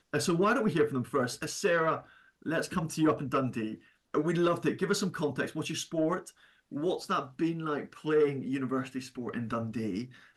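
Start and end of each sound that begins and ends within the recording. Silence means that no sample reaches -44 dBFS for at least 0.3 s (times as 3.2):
2.42–3.76
4.14–6.29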